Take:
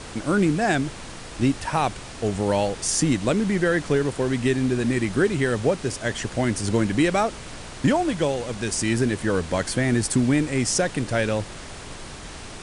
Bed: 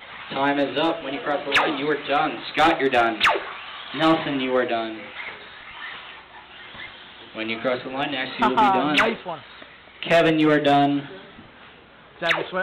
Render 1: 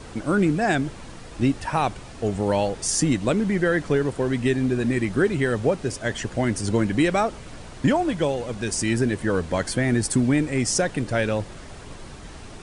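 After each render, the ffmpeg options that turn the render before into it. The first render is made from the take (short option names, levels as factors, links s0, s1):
-af "afftdn=nr=7:nf=-38"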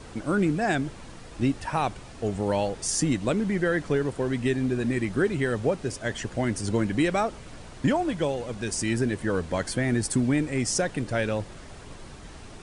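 -af "volume=0.668"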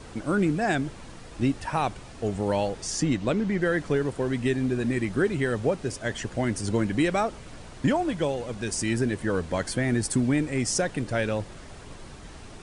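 -filter_complex "[0:a]asettb=1/sr,asplit=3[s0][s1][s2];[s0]atrim=end=2.824[s3];[s1]atrim=start=2.82:end=3.62,asetpts=PTS-STARTPTS,afade=t=in:d=0.004:c=qsin,afade=t=out:st=0.796:d=0.004:c=qsin,lowpass=6400[s4];[s2]atrim=start=3.616[s5];[s3][s4]acrossfade=d=0.004:c1=hsin:c2=qsin[s6];[s6][s5]acrossfade=d=0.004:c1=qsin:c2=hsin"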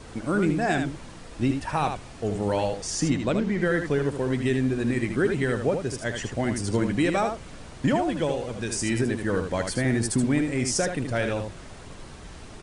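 -af "aecho=1:1:77:0.473"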